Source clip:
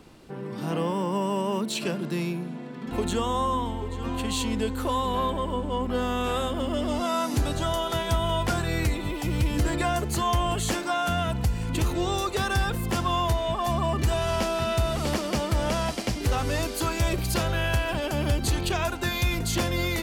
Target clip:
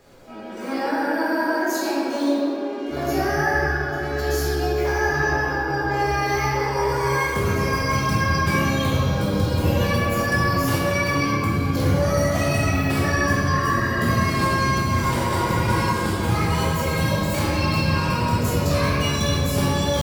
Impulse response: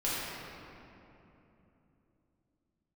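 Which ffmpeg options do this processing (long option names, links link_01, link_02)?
-filter_complex "[0:a]asetrate=72056,aresample=44100,atempo=0.612027[link_01];[1:a]atrim=start_sample=2205[link_02];[link_01][link_02]afir=irnorm=-1:irlink=0,volume=-4dB"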